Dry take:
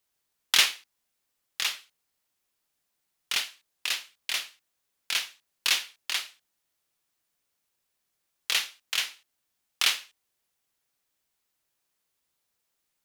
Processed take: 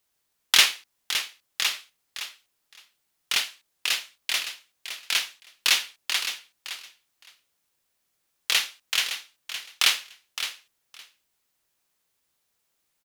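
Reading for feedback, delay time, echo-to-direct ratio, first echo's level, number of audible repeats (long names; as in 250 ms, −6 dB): 15%, 564 ms, −10.0 dB, −10.0 dB, 2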